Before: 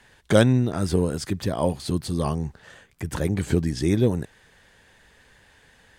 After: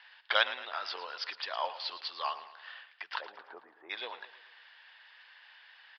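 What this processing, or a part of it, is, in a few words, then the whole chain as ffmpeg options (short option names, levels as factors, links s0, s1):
musical greeting card: -filter_complex "[0:a]asplit=3[s0][s1][s2];[s0]afade=t=out:st=3.2:d=0.02[s3];[s1]lowpass=f=1100:w=0.5412,lowpass=f=1100:w=1.3066,afade=t=in:st=3.2:d=0.02,afade=t=out:st=3.89:d=0.02[s4];[s2]afade=t=in:st=3.89:d=0.02[s5];[s3][s4][s5]amix=inputs=3:normalize=0,aresample=11025,aresample=44100,highpass=f=890:w=0.5412,highpass=f=890:w=1.3066,equalizer=f=2900:t=o:w=0.29:g=5,aecho=1:1:111|222|333|444|555:0.2|0.0958|0.046|0.0221|0.0106"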